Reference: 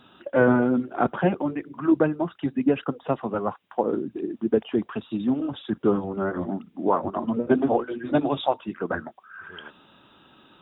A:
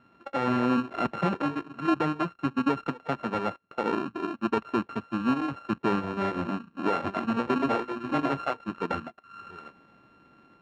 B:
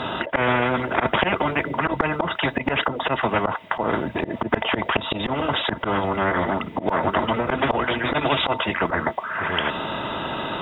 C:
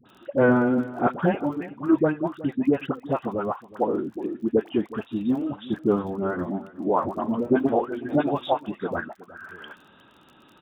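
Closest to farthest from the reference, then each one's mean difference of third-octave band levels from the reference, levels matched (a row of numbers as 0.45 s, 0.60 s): C, A, B; 4.0 dB, 7.0 dB, 11.0 dB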